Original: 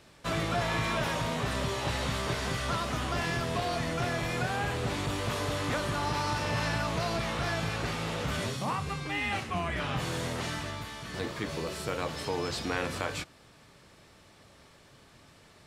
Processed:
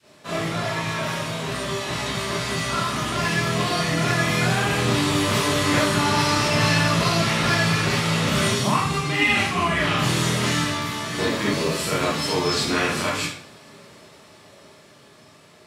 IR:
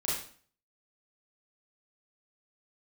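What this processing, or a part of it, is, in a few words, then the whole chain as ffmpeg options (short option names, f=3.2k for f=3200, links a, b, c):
far laptop microphone: -filter_complex "[0:a]highpass=67[a];[1:a]atrim=start_sample=2205[b];[a][b]afir=irnorm=-1:irlink=0,highpass=130,dynaudnorm=f=740:g=9:m=9dB,adynamicequalizer=threshold=0.0251:dfrequency=580:dqfactor=0.76:tfrequency=580:tqfactor=0.76:attack=5:release=100:ratio=0.375:range=3.5:mode=cutabove:tftype=bell"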